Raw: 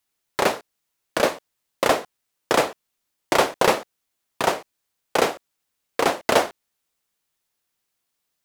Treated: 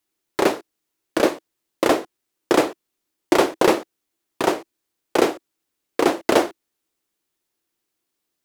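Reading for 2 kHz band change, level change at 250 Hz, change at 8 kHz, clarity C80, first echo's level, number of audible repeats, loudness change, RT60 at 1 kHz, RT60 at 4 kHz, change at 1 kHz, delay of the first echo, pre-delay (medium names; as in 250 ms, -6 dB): -1.5 dB, +8.0 dB, -1.5 dB, no reverb, no echo, no echo, +1.5 dB, no reverb, no reverb, -1.0 dB, no echo, no reverb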